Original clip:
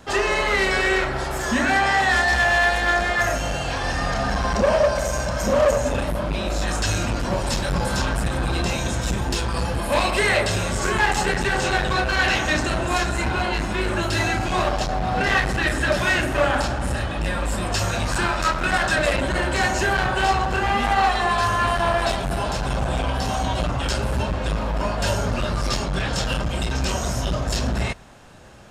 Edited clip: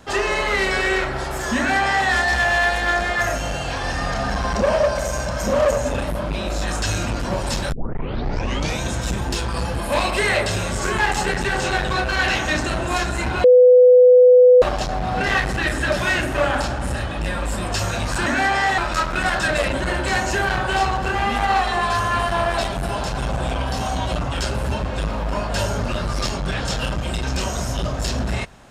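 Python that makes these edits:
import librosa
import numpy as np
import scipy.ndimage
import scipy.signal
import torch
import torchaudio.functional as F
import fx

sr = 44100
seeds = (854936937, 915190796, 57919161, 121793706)

y = fx.edit(x, sr, fx.duplicate(start_s=1.57, length_s=0.52, to_s=18.26),
    fx.tape_start(start_s=7.72, length_s=1.09),
    fx.bleep(start_s=13.44, length_s=1.18, hz=499.0, db=-6.5), tone=tone)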